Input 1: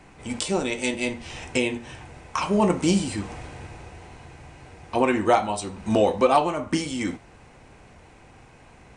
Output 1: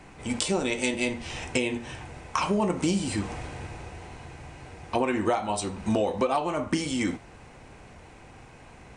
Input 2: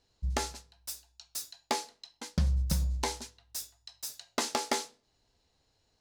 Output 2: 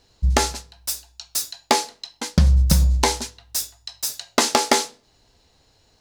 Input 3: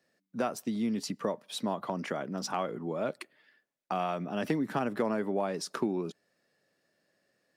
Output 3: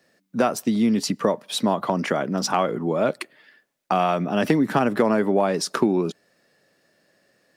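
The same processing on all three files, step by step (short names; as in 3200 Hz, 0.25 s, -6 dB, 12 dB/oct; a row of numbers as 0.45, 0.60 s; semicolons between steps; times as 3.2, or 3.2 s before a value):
compressor 6:1, threshold -23 dBFS; normalise peaks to -6 dBFS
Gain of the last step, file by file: +1.5, +13.5, +11.0 dB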